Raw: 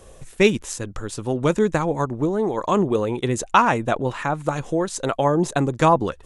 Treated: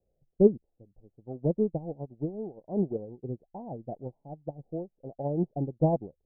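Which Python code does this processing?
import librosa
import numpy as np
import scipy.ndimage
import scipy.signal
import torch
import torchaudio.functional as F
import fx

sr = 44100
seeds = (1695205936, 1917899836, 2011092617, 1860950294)

y = scipy.signal.sosfilt(scipy.signal.butter(12, 790.0, 'lowpass', fs=sr, output='sos'), x)
y = fx.peak_eq(y, sr, hz=160.0, db=4.5, octaves=0.99)
y = fx.upward_expand(y, sr, threshold_db=-30.0, expansion=2.5)
y = y * 10.0 ** (-2.5 / 20.0)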